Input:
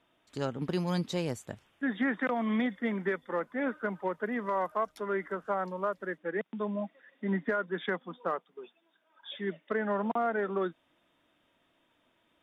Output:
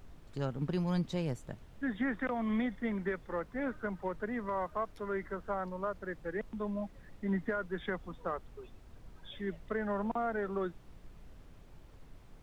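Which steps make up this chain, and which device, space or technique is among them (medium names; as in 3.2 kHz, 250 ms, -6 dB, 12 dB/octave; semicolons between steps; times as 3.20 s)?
car interior (peaking EQ 140 Hz +7 dB 0.77 oct; treble shelf 4.6 kHz -6.5 dB; brown noise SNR 14 dB); trim -4.5 dB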